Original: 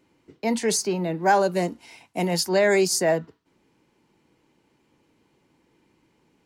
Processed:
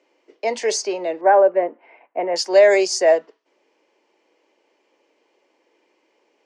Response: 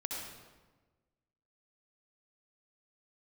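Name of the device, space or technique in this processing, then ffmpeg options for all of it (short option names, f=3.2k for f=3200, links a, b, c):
phone speaker on a table: -filter_complex "[0:a]highpass=f=390:w=0.5412,highpass=f=390:w=1.3066,equalizer=f=590:t=q:w=4:g=6,equalizer=f=920:t=q:w=4:g=-3,equalizer=f=1.4k:t=q:w=4:g=-6,equalizer=f=3.9k:t=q:w=4:g=-6,lowpass=f=6.4k:w=0.5412,lowpass=f=6.4k:w=1.3066,asettb=1/sr,asplit=3[a][b][c];[a]atrim=end=1.214[d];[b]atrim=start=1.21:end=2.36,asetpts=PTS-STARTPTS,afade=t=in:d=0.004:c=qsin,afade=t=out:st=1.146:d=0.004:c=qsin,lowpass=f=1.9k:w=0.5412,lowpass=f=1.9k:w=1.3066[e];[c]atrim=start=2.356[f];[d][e]acrossfade=d=0.004:c1=hsin:c2=qsin[g];[g][f]acrossfade=d=0.004:c1=qsin:c2=hsin,volume=4.5dB"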